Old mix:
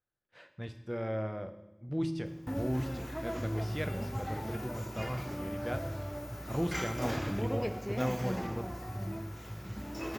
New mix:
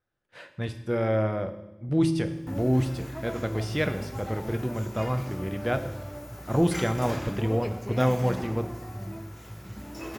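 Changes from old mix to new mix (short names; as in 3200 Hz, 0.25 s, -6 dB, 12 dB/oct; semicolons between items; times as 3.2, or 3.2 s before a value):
speech +9.5 dB; master: add bell 10000 Hz +9.5 dB 0.55 oct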